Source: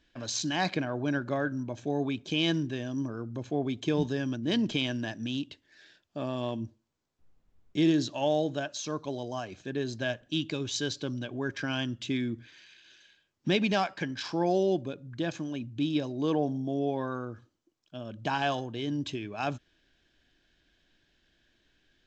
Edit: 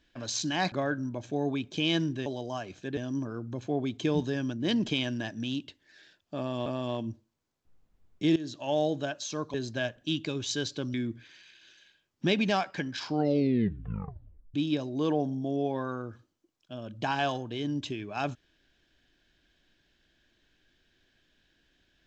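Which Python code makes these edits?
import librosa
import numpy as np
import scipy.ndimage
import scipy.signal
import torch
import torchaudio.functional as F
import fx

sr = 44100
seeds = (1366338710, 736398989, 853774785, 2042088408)

y = fx.edit(x, sr, fx.cut(start_s=0.72, length_s=0.54),
    fx.repeat(start_s=6.2, length_s=0.29, count=2),
    fx.fade_in_from(start_s=7.9, length_s=0.44, floor_db=-16.5),
    fx.move(start_s=9.08, length_s=0.71, to_s=2.8),
    fx.cut(start_s=11.19, length_s=0.98),
    fx.tape_stop(start_s=14.24, length_s=1.53), tone=tone)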